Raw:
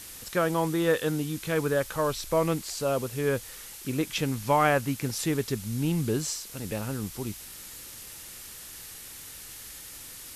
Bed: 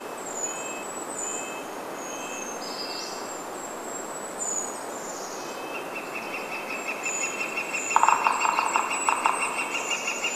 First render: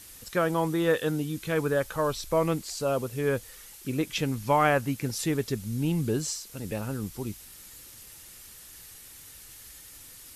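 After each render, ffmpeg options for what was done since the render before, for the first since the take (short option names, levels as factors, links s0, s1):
-af "afftdn=nr=6:nf=-44"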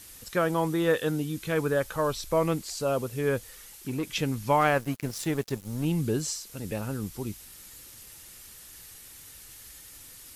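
-filter_complex "[0:a]asettb=1/sr,asplit=3[s0][s1][s2];[s0]atrim=end=3.534[s3];[s1]atrim=start=3.53:end=4.11,asetpts=PTS-STARTPTS,afade=t=in:d=0.004:c=qsin,afade=t=out:st=0.576:d=0.004:c=qsin,aeval=exprs='(tanh(15.8*val(0)+0.1)-tanh(0.1))/15.8':c=same[s4];[s2]atrim=start=4.106[s5];[s3][s4]acrossfade=d=0.004:c1=hsin:c2=qsin[s6];[s6][s5]acrossfade=d=0.004:c1=qsin:c2=hsin,asettb=1/sr,asplit=3[s7][s8][s9];[s7]atrim=end=4.614[s10];[s8]atrim=start=4.61:end=5.85,asetpts=PTS-STARTPTS,afade=t=in:d=0.004:c=qsin,afade=t=out:st=1.236:d=0.004:c=qsin,aeval=exprs='sgn(val(0))*max(abs(val(0))-0.00944,0)':c=same[s11];[s9]atrim=start=5.846[s12];[s10][s11]acrossfade=d=0.004:c1=hsin:c2=qsin[s13];[s13][s12]acrossfade=d=0.004:c1=qsin:c2=hsin"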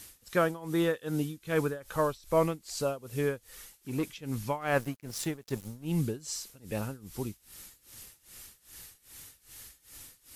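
-af "tremolo=f=2.5:d=0.91"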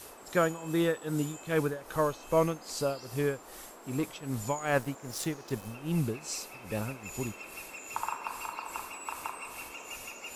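-filter_complex "[1:a]volume=0.168[s0];[0:a][s0]amix=inputs=2:normalize=0"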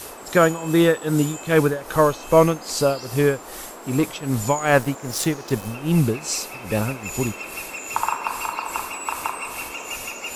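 -af "volume=3.76,alimiter=limit=0.708:level=0:latency=1"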